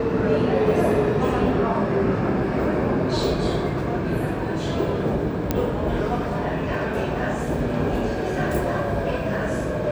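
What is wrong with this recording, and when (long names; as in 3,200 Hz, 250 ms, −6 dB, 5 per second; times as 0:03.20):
0:05.51: click −7 dBFS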